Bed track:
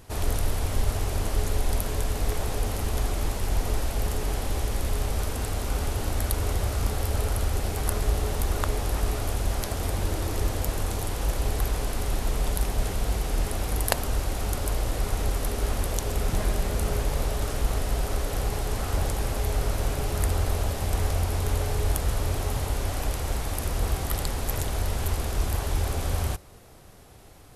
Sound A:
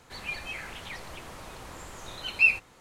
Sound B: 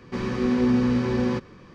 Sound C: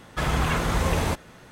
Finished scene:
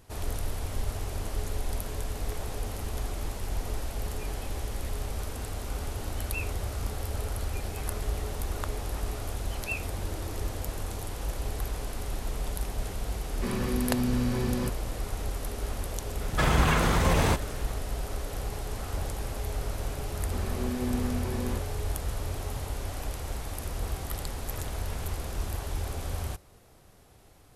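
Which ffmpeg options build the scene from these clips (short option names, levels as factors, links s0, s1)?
-filter_complex "[1:a]asplit=2[s0][s1];[2:a]asplit=2[s2][s3];[3:a]asplit=2[s4][s5];[0:a]volume=0.473[s6];[s2]acrossover=split=160|3000[s7][s8][s9];[s8]acompressor=threshold=0.0398:ratio=6:attack=3.2:release=140:knee=2.83:detection=peak[s10];[s7][s10][s9]amix=inputs=3:normalize=0[s11];[s4]alimiter=level_in=6.31:limit=0.891:release=50:level=0:latency=1[s12];[s5]acompressor=threshold=0.0282:ratio=6:attack=3.2:release=140:knee=1:detection=peak[s13];[s0]atrim=end=2.8,asetpts=PTS-STARTPTS,volume=0.133,afade=t=in:d=0.004:c=hsin,afade=t=out:st=2.796:d=0.004:c=hsin,adelay=173313S[s14];[s1]atrim=end=2.8,asetpts=PTS-STARTPTS,volume=0.188,afade=t=in:d=0.004:c=hsin,afade=t=out:st=2.796:d=0.004:c=hsin,adelay=7270[s15];[s11]atrim=end=1.74,asetpts=PTS-STARTPTS,volume=0.841,afade=t=in:d=0.004:c=hsin,afade=t=out:st=1.736:d=0.004:c=hsin,adelay=13300[s16];[s12]atrim=end=1.51,asetpts=PTS-STARTPTS,volume=0.211,afade=t=in:d=0.004:c=hsin,afade=t=out:st=1.506:d=0.004:c=hsin,adelay=16210[s17];[s3]atrim=end=1.74,asetpts=PTS-STARTPTS,volume=0.282,afade=t=in:d=0.004:c=hsin,afade=t=out:st=1.736:d=0.004:c=hsin,adelay=890820S[s18];[s13]atrim=end=1.51,asetpts=PTS-STARTPTS,volume=0.211,afade=t=in:d=0.004:c=hsin,afade=t=out:st=1.506:d=0.004:c=hsin,adelay=24410[s19];[s6][s14][s15][s16][s17][s18][s19]amix=inputs=7:normalize=0"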